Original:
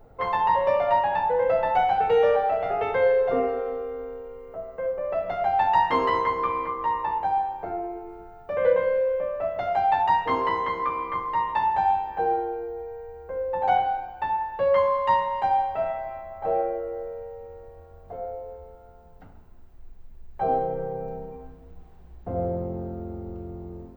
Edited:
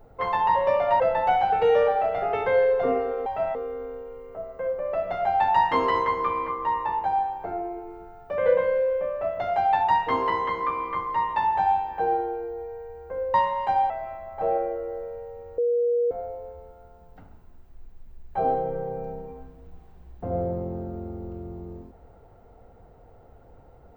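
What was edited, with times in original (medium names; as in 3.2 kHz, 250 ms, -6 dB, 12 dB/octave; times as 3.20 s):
1.00–1.48 s: delete
13.53–15.09 s: delete
15.65–15.94 s: move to 3.74 s
17.62–18.15 s: bleep 478 Hz -19.5 dBFS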